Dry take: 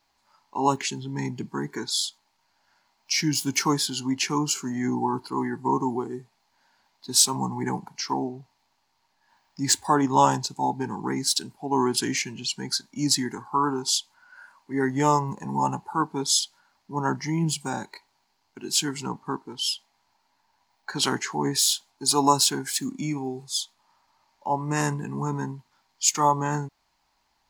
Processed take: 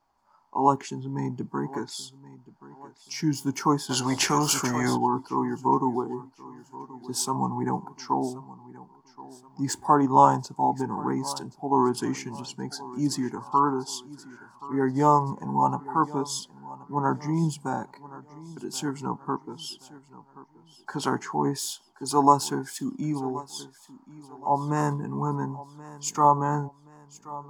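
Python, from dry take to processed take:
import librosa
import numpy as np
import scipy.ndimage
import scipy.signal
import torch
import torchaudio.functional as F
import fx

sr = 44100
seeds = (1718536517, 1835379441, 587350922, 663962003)

y = fx.high_shelf_res(x, sr, hz=1600.0, db=-10.0, q=1.5)
y = fx.notch(y, sr, hz=4000.0, q=9.6)
y = fx.echo_feedback(y, sr, ms=1077, feedback_pct=39, wet_db=-18.5)
y = fx.spectral_comp(y, sr, ratio=2.0, at=(3.89, 4.96), fade=0.02)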